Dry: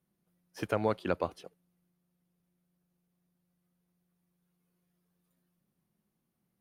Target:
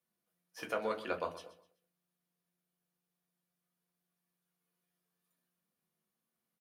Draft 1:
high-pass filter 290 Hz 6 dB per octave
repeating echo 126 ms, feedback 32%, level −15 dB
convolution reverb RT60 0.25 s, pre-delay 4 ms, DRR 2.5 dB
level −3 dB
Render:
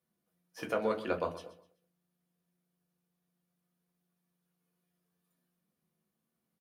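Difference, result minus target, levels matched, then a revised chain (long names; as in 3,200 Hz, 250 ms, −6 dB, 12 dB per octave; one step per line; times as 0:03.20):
250 Hz band +3.5 dB
high-pass filter 840 Hz 6 dB per octave
repeating echo 126 ms, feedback 32%, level −15 dB
convolution reverb RT60 0.25 s, pre-delay 4 ms, DRR 2.5 dB
level −3 dB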